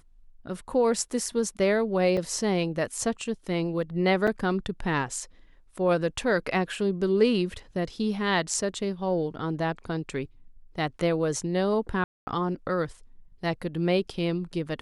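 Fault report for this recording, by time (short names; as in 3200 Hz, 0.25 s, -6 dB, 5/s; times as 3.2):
2.17 gap 4 ms
4.27–4.28 gap 5.7 ms
12.04–12.27 gap 0.23 s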